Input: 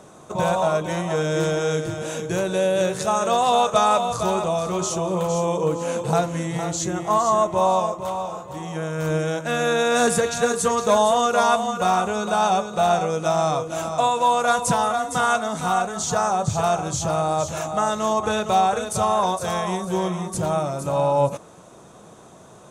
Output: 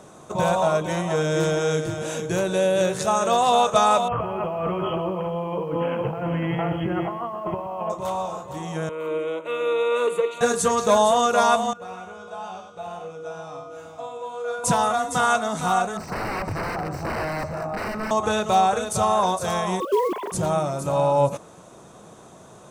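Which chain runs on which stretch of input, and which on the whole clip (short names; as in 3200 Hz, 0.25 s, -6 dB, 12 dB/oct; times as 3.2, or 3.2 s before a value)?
4.08–7.9 brick-wall FIR low-pass 3300 Hz + negative-ratio compressor -27 dBFS + lo-fi delay 0.124 s, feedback 35%, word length 9-bit, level -12.5 dB
8.89–10.41 steep high-pass 180 Hz 72 dB/oct + tone controls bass 0 dB, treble -14 dB + fixed phaser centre 1100 Hz, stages 8
11.73–14.64 high shelf 5900 Hz -10.5 dB + resonator 96 Hz, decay 0.74 s, harmonics odd, mix 90% + echo 98 ms -7 dB
15.97–18.11 wrapped overs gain 19 dB + running mean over 13 samples + echo 0.122 s -14 dB
19.8–20.32 sine-wave speech + bell 210 Hz +11 dB 0.87 oct + companded quantiser 6-bit
whole clip: dry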